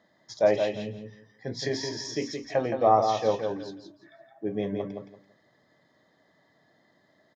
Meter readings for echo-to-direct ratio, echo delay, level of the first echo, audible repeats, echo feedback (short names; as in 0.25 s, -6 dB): -6.0 dB, 0.169 s, -6.0 dB, 3, 22%